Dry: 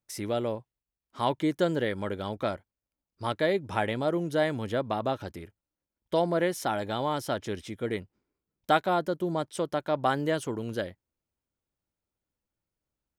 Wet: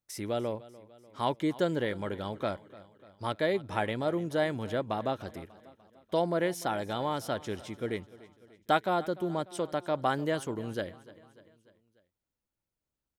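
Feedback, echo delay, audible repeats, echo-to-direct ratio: 55%, 296 ms, 3, -18.0 dB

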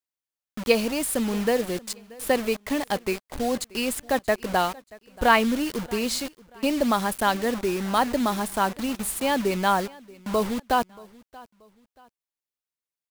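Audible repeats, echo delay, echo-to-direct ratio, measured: 2, 631 ms, -22.0 dB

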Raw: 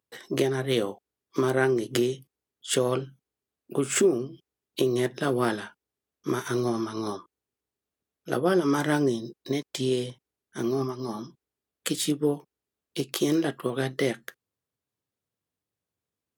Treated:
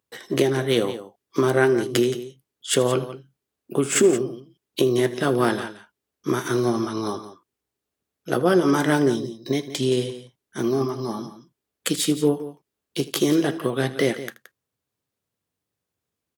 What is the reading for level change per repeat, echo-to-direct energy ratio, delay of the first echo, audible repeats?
no regular repeats, -12.0 dB, 79 ms, 2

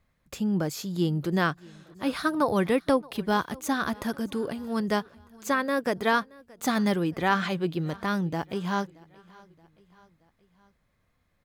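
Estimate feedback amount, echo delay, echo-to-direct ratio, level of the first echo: 53%, 625 ms, -22.5 dB, -24.0 dB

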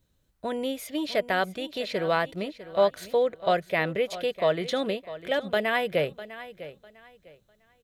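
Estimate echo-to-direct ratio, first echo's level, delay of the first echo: -14.5 dB, -15.0 dB, 651 ms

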